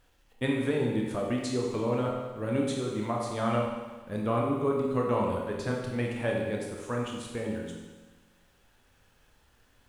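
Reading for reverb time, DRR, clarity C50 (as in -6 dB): 1.3 s, -1.5 dB, 2.0 dB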